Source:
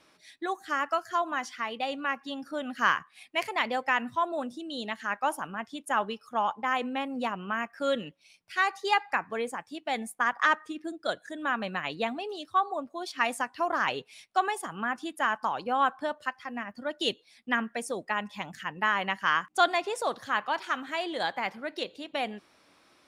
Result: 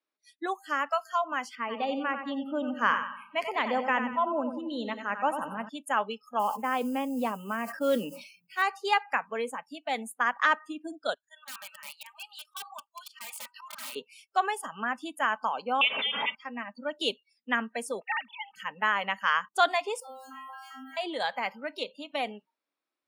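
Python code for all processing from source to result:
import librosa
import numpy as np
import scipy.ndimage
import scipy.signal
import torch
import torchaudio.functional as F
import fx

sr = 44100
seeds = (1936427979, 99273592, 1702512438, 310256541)

y = fx.chain(x, sr, fx.tilt_eq(slope=-2.5),
    fx.echo_feedback(ms=91, feedback_pct=48, wet_db=-8.0), at=(1.55, 5.69))
y = fx.chain(y, sr, fx.tilt_shelf(db=5.5, hz=800.0),
    fx.mod_noise(seeds[0], snr_db=22),
    fx.sustainer(db_per_s=78.0), at=(6.39, 8.62))
y = fx.chain(y, sr, fx.highpass(hz=1000.0, slope=24),
    fx.auto_swell(attack_ms=123.0),
    fx.overflow_wrap(gain_db=32.5), at=(11.14, 13.96))
y = fx.chain(y, sr, fx.crossing_spikes(level_db=-25.0),
    fx.freq_invert(carrier_hz=3800),
    fx.pre_swell(db_per_s=38.0), at=(15.81, 16.35))
y = fx.chain(y, sr, fx.sine_speech(),
    fx.highpass(hz=890.0, slope=6),
    fx.tilt_eq(slope=2.0), at=(18.0, 18.56))
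y = fx.chain(y, sr, fx.zero_step(step_db=-37.0),
    fx.stiff_resonator(f0_hz=260.0, decay_s=0.73, stiffness=0.002),
    fx.env_flatten(amount_pct=50), at=(20.0, 20.97))
y = scipy.signal.sosfilt(scipy.signal.butter(4, 220.0, 'highpass', fs=sr, output='sos'), y)
y = fx.noise_reduce_blind(y, sr, reduce_db=28)
y = fx.peak_eq(y, sr, hz=5900.0, db=-5.0, octaves=0.39)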